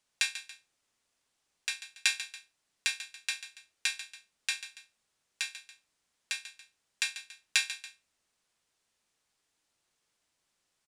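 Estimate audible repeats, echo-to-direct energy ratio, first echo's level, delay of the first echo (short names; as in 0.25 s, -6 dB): 2, -12.0 dB, -12.5 dB, 0.141 s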